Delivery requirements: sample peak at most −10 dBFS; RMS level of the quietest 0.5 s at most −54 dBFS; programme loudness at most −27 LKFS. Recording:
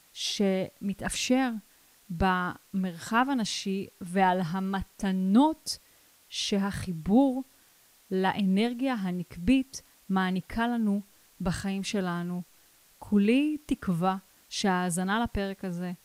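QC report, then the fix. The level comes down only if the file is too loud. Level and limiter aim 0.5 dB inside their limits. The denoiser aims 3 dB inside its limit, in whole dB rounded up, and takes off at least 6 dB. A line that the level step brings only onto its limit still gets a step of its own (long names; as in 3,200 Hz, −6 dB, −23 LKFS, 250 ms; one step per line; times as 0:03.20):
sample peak −11.5 dBFS: in spec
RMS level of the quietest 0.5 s −61 dBFS: in spec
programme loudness −28.5 LKFS: in spec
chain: no processing needed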